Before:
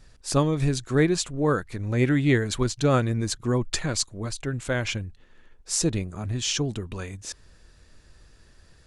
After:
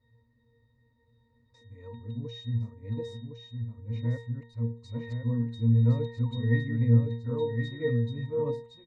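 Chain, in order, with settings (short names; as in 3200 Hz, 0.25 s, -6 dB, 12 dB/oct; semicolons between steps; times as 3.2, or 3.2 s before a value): whole clip reversed; octave resonator A#, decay 0.43 s; echo 1.062 s -5.5 dB; gain +7.5 dB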